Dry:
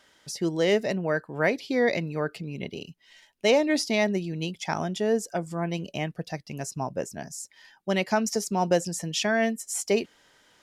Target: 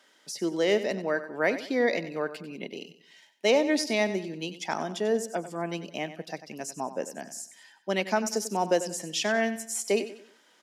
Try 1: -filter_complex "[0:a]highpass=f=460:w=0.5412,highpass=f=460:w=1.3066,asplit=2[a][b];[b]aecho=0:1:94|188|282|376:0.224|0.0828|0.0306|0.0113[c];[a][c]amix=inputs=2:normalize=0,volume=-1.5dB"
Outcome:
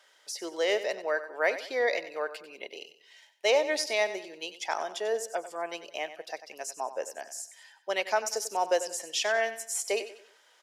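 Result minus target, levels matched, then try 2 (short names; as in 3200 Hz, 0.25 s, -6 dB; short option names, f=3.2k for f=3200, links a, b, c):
250 Hz band -13.0 dB
-filter_complex "[0:a]highpass=f=210:w=0.5412,highpass=f=210:w=1.3066,asplit=2[a][b];[b]aecho=0:1:94|188|282|376:0.224|0.0828|0.0306|0.0113[c];[a][c]amix=inputs=2:normalize=0,volume=-1.5dB"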